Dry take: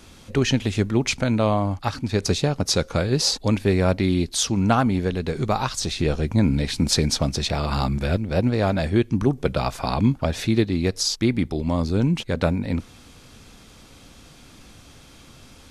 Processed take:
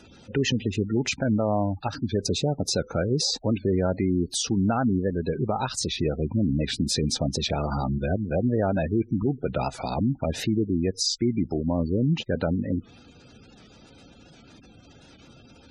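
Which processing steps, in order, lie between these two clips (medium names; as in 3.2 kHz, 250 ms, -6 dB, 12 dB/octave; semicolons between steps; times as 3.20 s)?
spectral gate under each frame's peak -20 dB strong; peak limiter -14.5 dBFS, peak gain reduction 7.5 dB; comb of notches 1.1 kHz; warped record 78 rpm, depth 100 cents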